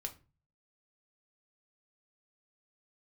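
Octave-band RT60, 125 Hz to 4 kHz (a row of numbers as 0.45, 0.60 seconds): 0.65, 0.45, 0.35, 0.30, 0.30, 0.25 seconds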